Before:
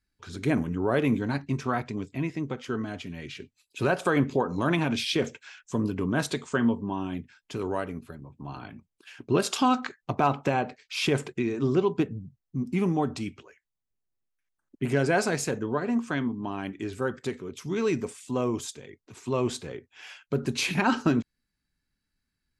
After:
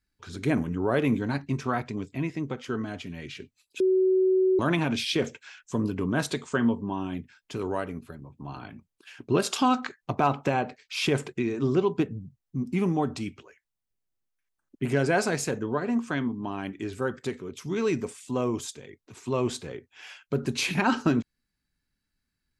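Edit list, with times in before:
3.80–4.59 s: bleep 375 Hz -18.5 dBFS

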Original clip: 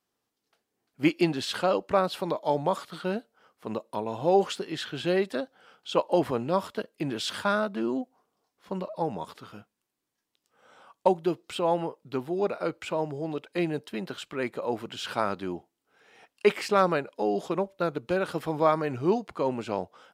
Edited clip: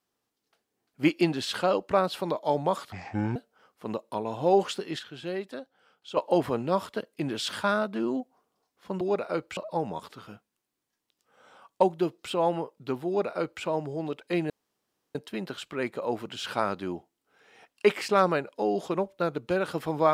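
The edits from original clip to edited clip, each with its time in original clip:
2.92–3.17 s: speed 57%
4.80–5.98 s: gain -8 dB
12.32–12.88 s: copy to 8.82 s
13.75 s: insert room tone 0.65 s

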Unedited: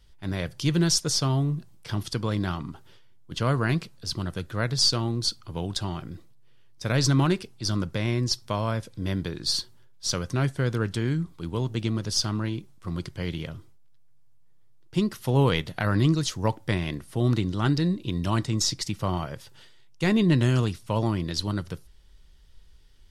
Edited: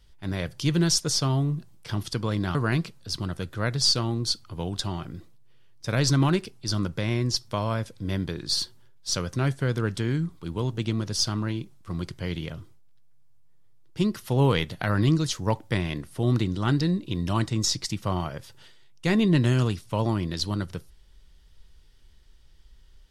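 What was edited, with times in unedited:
2.55–3.52 s: delete

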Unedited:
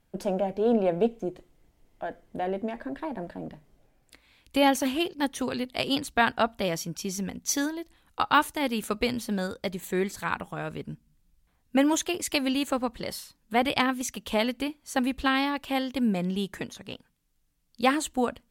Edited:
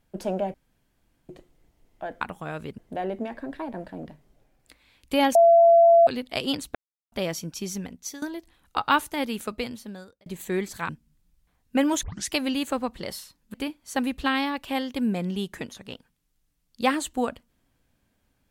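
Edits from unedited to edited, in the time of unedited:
0.54–1.29 s: room tone
4.78–5.50 s: bleep 676 Hz -11.5 dBFS
6.18–6.55 s: mute
7.16–7.65 s: fade out, to -18 dB
8.62–9.69 s: fade out
10.32–10.89 s: move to 2.21 s
12.03 s: tape start 0.25 s
13.54–14.54 s: delete

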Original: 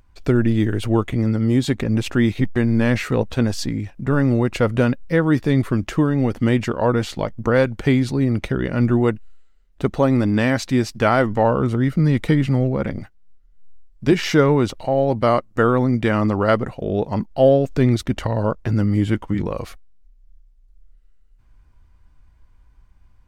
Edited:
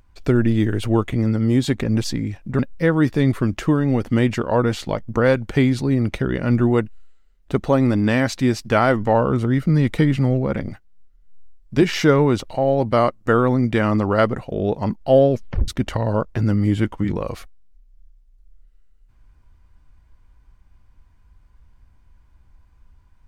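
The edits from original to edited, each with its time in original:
2.04–3.57 s: delete
4.12–4.89 s: delete
17.61 s: tape stop 0.37 s

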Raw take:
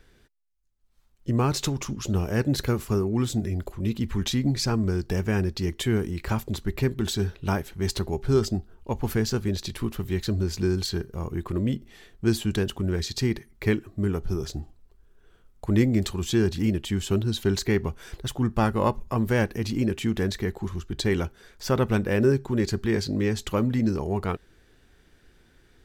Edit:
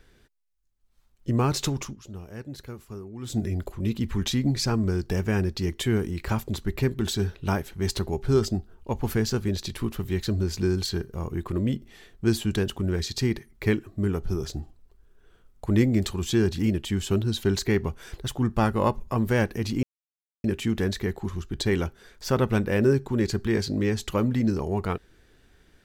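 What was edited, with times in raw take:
1.80–3.38 s: dip -14.5 dB, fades 0.17 s
19.83 s: insert silence 0.61 s

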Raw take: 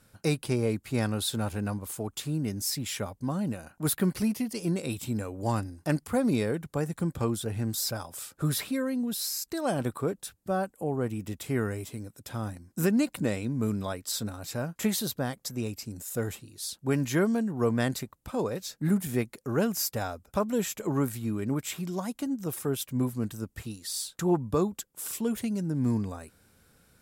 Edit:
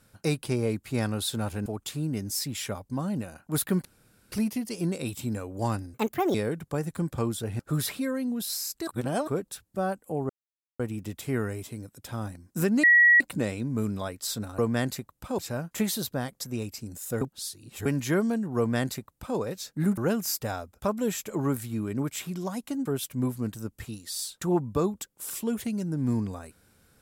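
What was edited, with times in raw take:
1.66–1.97 s: delete
4.16 s: insert room tone 0.47 s
5.78–6.37 s: speed 146%
7.62–8.31 s: delete
9.59–9.99 s: reverse
11.01 s: insert silence 0.50 s
13.05 s: add tone 1.92 kHz -14 dBFS 0.37 s
16.26–16.90 s: reverse
17.62–18.42 s: copy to 14.43 s
19.02–19.49 s: delete
22.37–22.63 s: delete

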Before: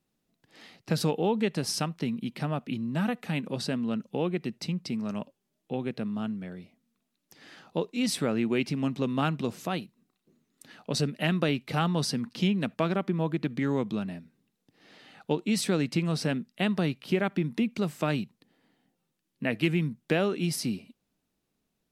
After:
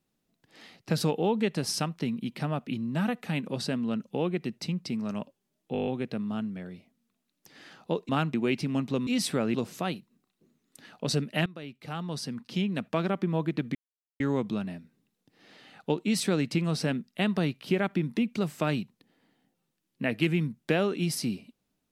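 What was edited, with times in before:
5.73 s: stutter 0.02 s, 8 plays
7.95–8.42 s: swap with 9.15–9.40 s
11.32–13.04 s: fade in, from -20.5 dB
13.61 s: insert silence 0.45 s

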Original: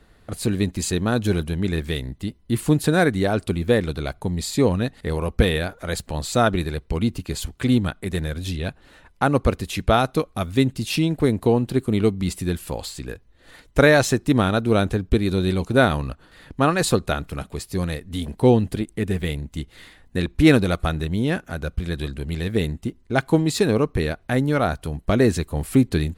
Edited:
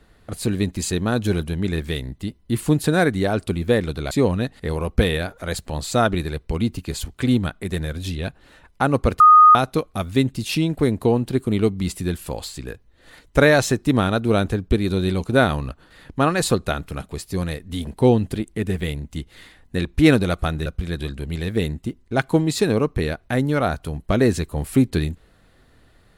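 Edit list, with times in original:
4.11–4.52 s: delete
9.61–9.96 s: bleep 1.24 kHz -6 dBFS
21.07–21.65 s: delete

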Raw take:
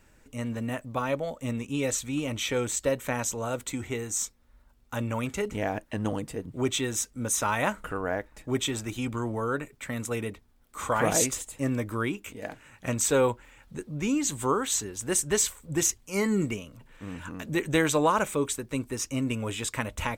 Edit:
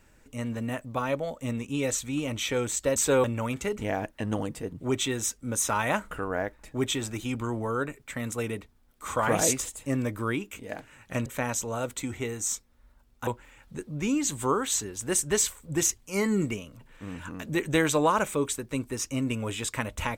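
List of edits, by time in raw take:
2.96–4.97 s: swap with 12.99–13.27 s

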